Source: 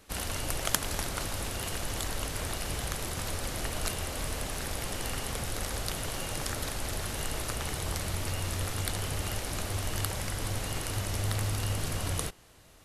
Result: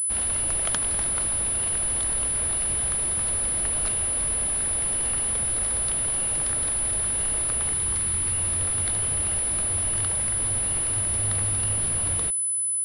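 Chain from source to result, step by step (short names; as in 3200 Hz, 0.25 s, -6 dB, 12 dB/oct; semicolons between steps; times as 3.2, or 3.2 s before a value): 7.73–8.38 bell 630 Hz -11.5 dB 0.36 oct; pulse-width modulation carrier 10000 Hz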